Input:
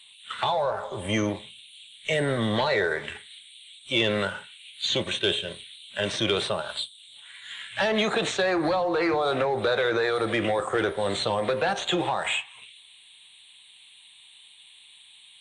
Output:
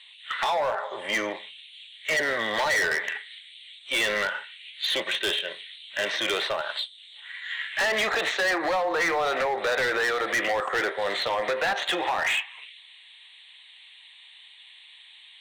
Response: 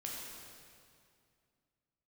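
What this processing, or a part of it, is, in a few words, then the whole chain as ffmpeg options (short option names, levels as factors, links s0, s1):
megaphone: -af "highpass=550,lowpass=4000,equalizer=f=1900:t=o:w=0.3:g=10,asoftclip=type=hard:threshold=0.0631,volume=1.41"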